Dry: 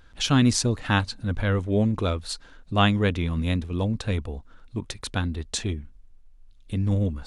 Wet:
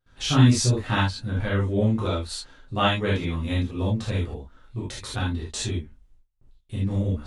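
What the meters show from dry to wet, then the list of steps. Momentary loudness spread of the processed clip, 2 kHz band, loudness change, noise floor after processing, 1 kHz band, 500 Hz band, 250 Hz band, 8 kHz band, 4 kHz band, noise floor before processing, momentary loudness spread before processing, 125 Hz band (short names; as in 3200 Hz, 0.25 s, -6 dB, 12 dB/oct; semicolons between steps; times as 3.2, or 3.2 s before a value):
15 LU, -0.5 dB, +0.5 dB, -59 dBFS, +0.5 dB, 0.0 dB, -0.5 dB, 0.0 dB, +0.5 dB, -51 dBFS, 14 LU, +1.5 dB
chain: gate with hold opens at -42 dBFS; non-linear reverb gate 0.1 s flat, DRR -7.5 dB; gain -8 dB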